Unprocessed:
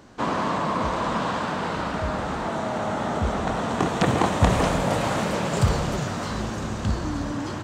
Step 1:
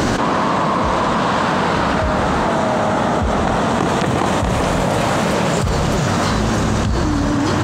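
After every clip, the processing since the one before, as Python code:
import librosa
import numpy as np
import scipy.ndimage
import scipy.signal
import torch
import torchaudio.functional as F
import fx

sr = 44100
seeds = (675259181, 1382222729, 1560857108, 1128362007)

y = fx.env_flatten(x, sr, amount_pct=100)
y = y * 10.0 ** (-3.5 / 20.0)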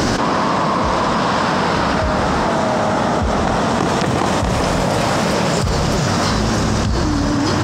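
y = fx.peak_eq(x, sr, hz=5200.0, db=8.5, octaves=0.31)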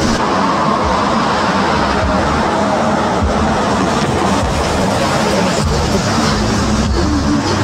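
y = fx.ensemble(x, sr)
y = y * 10.0 ** (6.0 / 20.0)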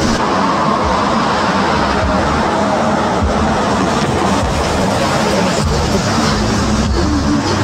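y = fx.peak_eq(x, sr, hz=10000.0, db=-2.5, octaves=0.22)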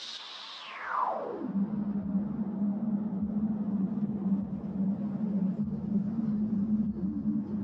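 y = fx.filter_sweep_bandpass(x, sr, from_hz=3700.0, to_hz=200.0, start_s=0.59, end_s=1.55, q=6.5)
y = y * 10.0 ** (-8.0 / 20.0)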